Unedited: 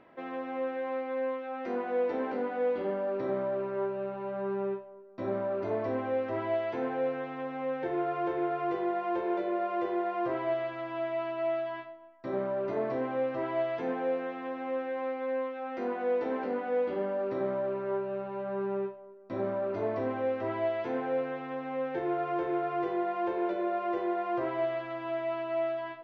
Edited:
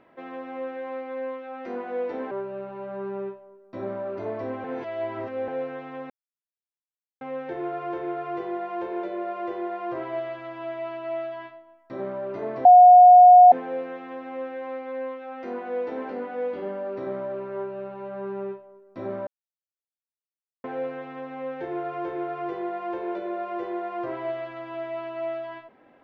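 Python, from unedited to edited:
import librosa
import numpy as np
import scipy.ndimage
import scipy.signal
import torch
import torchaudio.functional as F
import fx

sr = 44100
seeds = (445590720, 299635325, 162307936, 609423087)

y = fx.edit(x, sr, fx.cut(start_s=2.31, length_s=1.45),
    fx.reverse_span(start_s=6.09, length_s=0.84),
    fx.insert_silence(at_s=7.55, length_s=1.11),
    fx.bleep(start_s=12.99, length_s=0.87, hz=722.0, db=-7.0),
    fx.silence(start_s=19.61, length_s=1.37), tone=tone)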